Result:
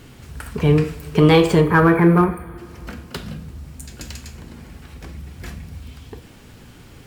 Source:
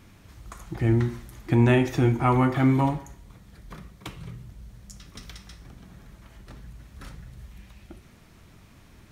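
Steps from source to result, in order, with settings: spectral delete 2.07–3.33, 2000–6800 Hz; two-slope reverb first 0.57 s, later 4.3 s, from -18 dB, DRR 11 dB; in parallel at -11 dB: hard clip -23.5 dBFS, distortion -7 dB; on the sum: varispeed +29%; gain +6 dB

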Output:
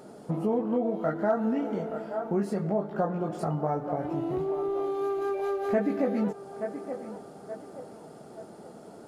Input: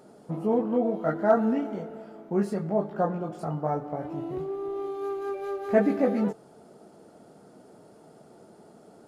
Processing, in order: narrowing echo 0.875 s, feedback 47%, band-pass 780 Hz, level -14.5 dB; compressor 2.5:1, threshold -32 dBFS, peak gain reduction 11.5 dB; gain +5 dB

